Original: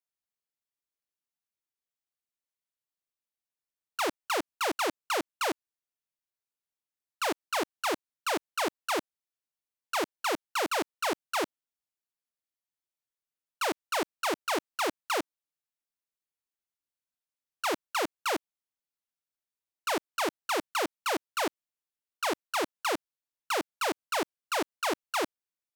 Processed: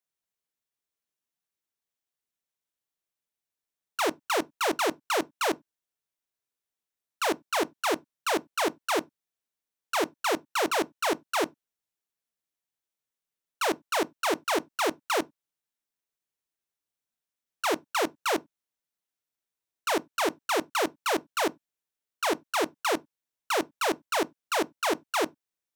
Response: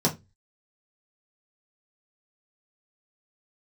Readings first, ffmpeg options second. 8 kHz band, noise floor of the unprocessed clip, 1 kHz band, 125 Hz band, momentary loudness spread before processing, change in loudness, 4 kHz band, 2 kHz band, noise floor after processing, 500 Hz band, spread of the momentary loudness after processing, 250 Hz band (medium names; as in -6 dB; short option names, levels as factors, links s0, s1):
+2.5 dB, under -85 dBFS, +2.5 dB, +3.5 dB, 3 LU, +3.0 dB, +2.0 dB, +2.5 dB, under -85 dBFS, +4.0 dB, 3 LU, +4.0 dB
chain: -filter_complex "[0:a]asplit=2[s0][s1];[1:a]atrim=start_sample=2205,atrim=end_sample=4410[s2];[s1][s2]afir=irnorm=-1:irlink=0,volume=0.0473[s3];[s0][s3]amix=inputs=2:normalize=0,volume=1.26"